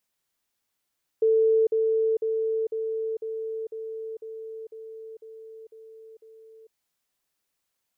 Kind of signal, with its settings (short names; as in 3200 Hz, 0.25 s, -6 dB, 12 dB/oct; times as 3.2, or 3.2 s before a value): level ladder 444 Hz -17 dBFS, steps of -3 dB, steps 11, 0.45 s 0.05 s